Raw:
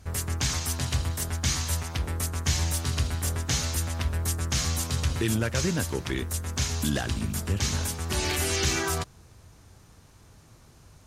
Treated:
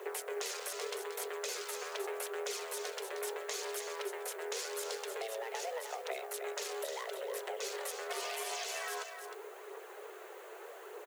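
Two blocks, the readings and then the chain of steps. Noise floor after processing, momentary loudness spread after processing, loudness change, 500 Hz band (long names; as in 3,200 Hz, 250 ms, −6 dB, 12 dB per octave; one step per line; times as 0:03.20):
−50 dBFS, 11 LU, −12.0 dB, −2.0 dB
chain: adaptive Wiener filter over 9 samples
low-shelf EQ 140 Hz −10.5 dB
brickwall limiter −20.5 dBFS, peak gain reduction 6 dB
downward compressor 12 to 1, threshold −46 dBFS, peak gain reduction 19.5 dB
frequency shifter +330 Hz
background noise blue −73 dBFS
phase shifter 0.82 Hz, delay 4 ms, feedback 33%
on a send: single-tap delay 309 ms −7.5 dB
on the sum: level +8.5 dB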